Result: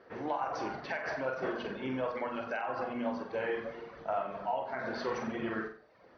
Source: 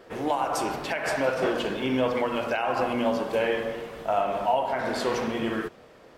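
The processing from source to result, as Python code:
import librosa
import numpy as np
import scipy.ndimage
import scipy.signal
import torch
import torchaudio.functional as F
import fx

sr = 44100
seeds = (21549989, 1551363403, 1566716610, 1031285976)

p1 = scipy.signal.sosfilt(scipy.signal.butter(2, 51.0, 'highpass', fs=sr, output='sos'), x)
p2 = fx.dereverb_blind(p1, sr, rt60_s=0.76)
p3 = scipy.signal.sosfilt(scipy.signal.cheby1(6, 6, 6100.0, 'lowpass', fs=sr, output='sos'), p2)
p4 = fx.high_shelf(p3, sr, hz=2700.0, db=-10.0)
p5 = p4 + fx.room_flutter(p4, sr, wall_m=7.8, rt60_s=0.41, dry=0)
p6 = fx.rider(p5, sr, range_db=4, speed_s=0.5)
y = p6 * librosa.db_to_amplitude(-3.0)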